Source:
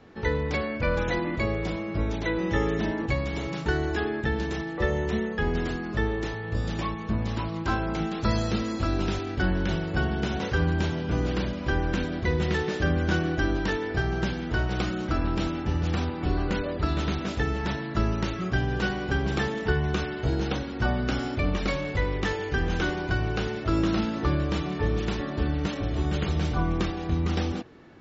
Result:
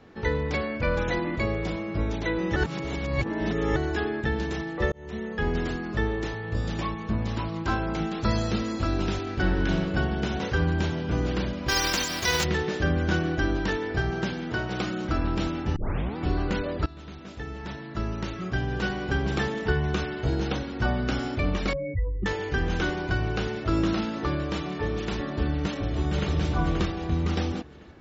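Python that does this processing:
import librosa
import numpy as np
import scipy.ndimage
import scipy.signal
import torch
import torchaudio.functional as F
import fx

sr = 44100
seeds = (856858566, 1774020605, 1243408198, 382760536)

y = fx.reverb_throw(x, sr, start_s=9.22, length_s=0.55, rt60_s=1.6, drr_db=3.5)
y = fx.envelope_flatten(y, sr, power=0.3, at=(11.68, 12.43), fade=0.02)
y = fx.highpass(y, sr, hz=120.0, slope=12, at=(14.1, 15.05))
y = fx.spec_expand(y, sr, power=3.2, at=(21.73, 22.26))
y = fx.low_shelf(y, sr, hz=160.0, db=-6.5, at=(23.93, 25.12))
y = fx.echo_throw(y, sr, start_s=25.62, length_s=0.7, ms=530, feedback_pct=35, wet_db=-5.5)
y = fx.edit(y, sr, fx.reverse_span(start_s=2.56, length_s=1.2),
    fx.fade_in_span(start_s=4.92, length_s=0.53),
    fx.tape_start(start_s=15.76, length_s=0.41),
    fx.fade_in_from(start_s=16.86, length_s=2.29, floor_db=-19.5), tone=tone)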